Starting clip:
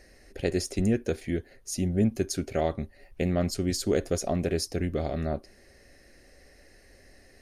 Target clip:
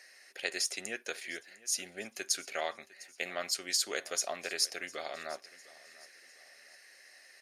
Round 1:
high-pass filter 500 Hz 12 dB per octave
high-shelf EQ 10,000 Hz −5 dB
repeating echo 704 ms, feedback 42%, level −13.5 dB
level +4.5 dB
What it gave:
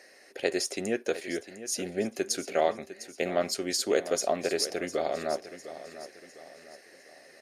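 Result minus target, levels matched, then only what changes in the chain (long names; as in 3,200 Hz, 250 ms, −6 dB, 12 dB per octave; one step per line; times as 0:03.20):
500 Hz band +8.5 dB; echo-to-direct +7 dB
change: high-pass filter 1,300 Hz 12 dB per octave
change: repeating echo 704 ms, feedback 42%, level −20.5 dB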